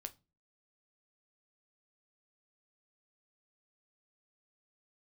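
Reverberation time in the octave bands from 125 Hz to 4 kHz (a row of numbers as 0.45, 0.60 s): 0.45, 0.45, 0.30, 0.25, 0.20, 0.25 s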